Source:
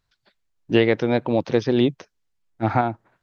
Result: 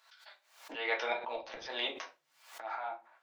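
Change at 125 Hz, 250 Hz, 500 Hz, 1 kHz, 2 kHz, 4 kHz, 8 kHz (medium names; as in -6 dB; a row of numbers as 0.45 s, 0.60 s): under -40 dB, -31.0 dB, -18.5 dB, -12.5 dB, -7.0 dB, -6.0 dB, no reading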